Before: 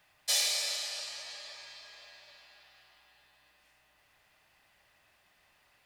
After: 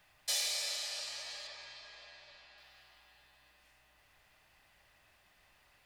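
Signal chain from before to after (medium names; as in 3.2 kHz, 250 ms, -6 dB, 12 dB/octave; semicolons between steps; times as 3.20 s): bass shelf 66 Hz +11 dB; compression 1.5:1, threshold -40 dBFS, peak gain reduction 6 dB; 1.47–2.58 s: distance through air 63 m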